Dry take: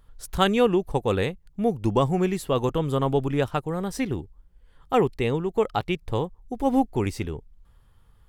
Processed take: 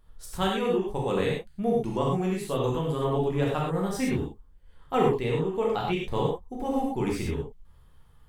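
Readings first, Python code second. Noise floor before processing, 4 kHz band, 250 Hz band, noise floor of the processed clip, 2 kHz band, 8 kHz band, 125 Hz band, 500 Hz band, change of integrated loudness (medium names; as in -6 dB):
-57 dBFS, -3.5 dB, -3.0 dB, -55 dBFS, -3.0 dB, -1.5 dB, -2.5 dB, -2.5 dB, -2.5 dB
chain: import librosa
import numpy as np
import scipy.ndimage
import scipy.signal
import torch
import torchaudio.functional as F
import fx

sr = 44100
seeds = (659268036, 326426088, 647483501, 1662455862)

y = fx.rider(x, sr, range_db=4, speed_s=0.5)
y = fx.rev_gated(y, sr, seeds[0], gate_ms=140, shape='flat', drr_db=-3.5)
y = y * 10.0 ** (-8.0 / 20.0)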